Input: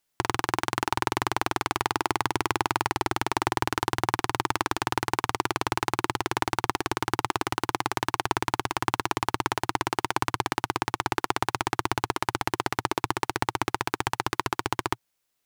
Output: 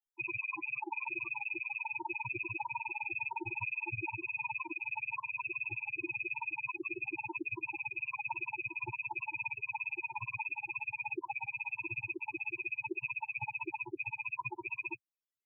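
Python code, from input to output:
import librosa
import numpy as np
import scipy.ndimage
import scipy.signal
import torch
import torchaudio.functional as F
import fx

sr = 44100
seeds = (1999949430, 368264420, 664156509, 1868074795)

y = fx.rattle_buzz(x, sr, strikes_db=-36.0, level_db=-9.0)
y = fx.spec_topn(y, sr, count=4)
y = y * librosa.db_to_amplitude(-3.0)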